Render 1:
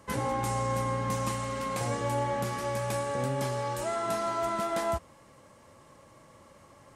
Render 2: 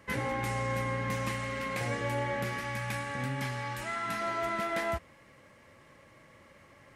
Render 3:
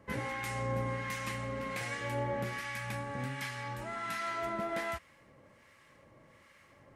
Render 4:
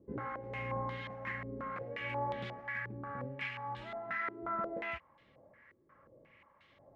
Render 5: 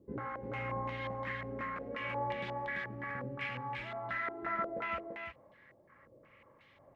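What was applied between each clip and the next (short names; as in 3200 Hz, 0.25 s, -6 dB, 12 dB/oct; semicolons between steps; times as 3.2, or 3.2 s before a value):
spectral gain 2.61–4.21, 320–700 Hz -8 dB; graphic EQ 1000/2000/8000 Hz -5/+10/-6 dB; gain -2 dB
harmonic tremolo 1.3 Hz, depth 70%, crossover 1100 Hz
stepped low-pass 5.6 Hz 370–3500 Hz; gain -6.5 dB
echo 0.339 s -4.5 dB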